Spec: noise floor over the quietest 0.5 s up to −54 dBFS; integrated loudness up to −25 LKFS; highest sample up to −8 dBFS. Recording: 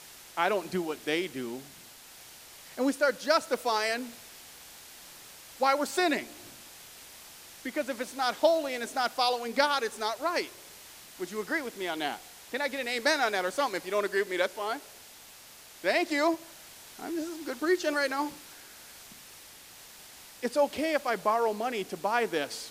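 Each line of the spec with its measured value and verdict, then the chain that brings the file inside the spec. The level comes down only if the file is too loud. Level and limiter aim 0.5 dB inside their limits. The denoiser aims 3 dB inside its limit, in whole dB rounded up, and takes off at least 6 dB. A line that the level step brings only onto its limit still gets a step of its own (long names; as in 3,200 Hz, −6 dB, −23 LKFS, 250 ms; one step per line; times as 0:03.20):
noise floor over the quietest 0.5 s −51 dBFS: out of spec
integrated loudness −30.0 LKFS: in spec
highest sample −9.5 dBFS: in spec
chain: broadband denoise 6 dB, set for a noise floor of −51 dBFS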